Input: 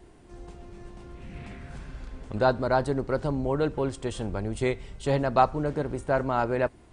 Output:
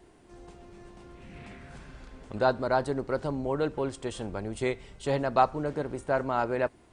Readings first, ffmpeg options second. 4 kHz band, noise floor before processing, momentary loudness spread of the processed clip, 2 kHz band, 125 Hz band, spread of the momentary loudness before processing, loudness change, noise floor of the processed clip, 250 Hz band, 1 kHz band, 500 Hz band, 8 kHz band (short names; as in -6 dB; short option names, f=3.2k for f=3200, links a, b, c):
-1.5 dB, -53 dBFS, 22 LU, -1.5 dB, -6.0 dB, 22 LU, -2.5 dB, -58 dBFS, -3.5 dB, -1.5 dB, -2.0 dB, -1.5 dB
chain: -af "lowshelf=f=140:g=-8,volume=-1.5dB"